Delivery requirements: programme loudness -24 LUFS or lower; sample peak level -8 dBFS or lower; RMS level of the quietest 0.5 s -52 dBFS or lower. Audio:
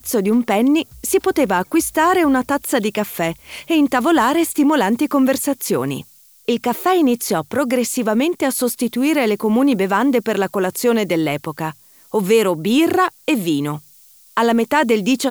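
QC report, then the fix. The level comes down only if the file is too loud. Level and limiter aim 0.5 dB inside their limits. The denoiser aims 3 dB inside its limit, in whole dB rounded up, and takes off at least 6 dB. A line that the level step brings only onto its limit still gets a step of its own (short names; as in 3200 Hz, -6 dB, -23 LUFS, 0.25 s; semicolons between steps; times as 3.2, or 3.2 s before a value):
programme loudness -17.5 LUFS: fail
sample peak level -4.0 dBFS: fail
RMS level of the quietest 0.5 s -48 dBFS: fail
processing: gain -7 dB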